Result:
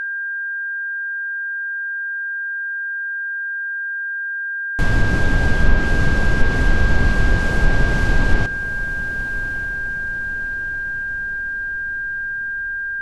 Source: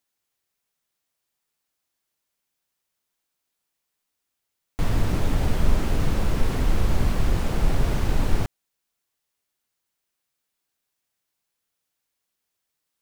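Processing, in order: diffused feedback echo 1.158 s, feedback 52%, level -14 dB; whine 1600 Hz -27 dBFS; treble ducked by the level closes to 2100 Hz, closed at -7.5 dBFS; gain +5 dB

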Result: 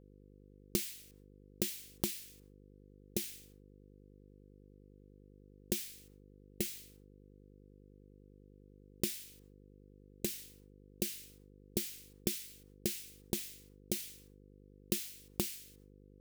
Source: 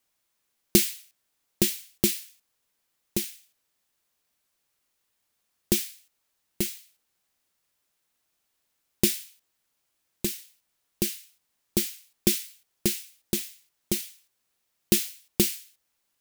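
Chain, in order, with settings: gate with hold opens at -56 dBFS; buzz 50 Hz, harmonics 10, -60 dBFS -3 dB/oct; compressor 4:1, threshold -34 dBFS, peak gain reduction 16.5 dB

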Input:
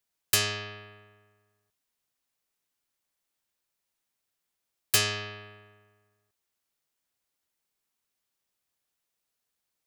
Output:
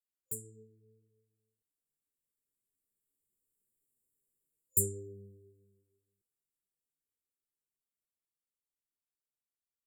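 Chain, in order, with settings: Doppler pass-by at 3.92, 19 m/s, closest 15 m; chorus voices 6, 0.7 Hz, delay 11 ms, depth 3.7 ms; FFT band-reject 520–7000 Hz; gain +5 dB

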